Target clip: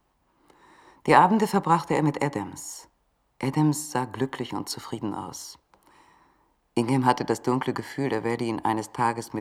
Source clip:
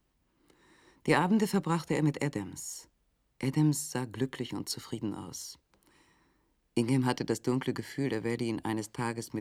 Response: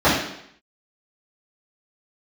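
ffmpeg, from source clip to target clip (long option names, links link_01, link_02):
-filter_complex "[0:a]equalizer=frequency=880:width=0.96:gain=11.5,asplit=2[link_01][link_02];[link_02]highpass=460[link_03];[1:a]atrim=start_sample=2205,lowpass=2500[link_04];[link_03][link_04]afir=irnorm=-1:irlink=0,volume=-40.5dB[link_05];[link_01][link_05]amix=inputs=2:normalize=0,volume=2.5dB"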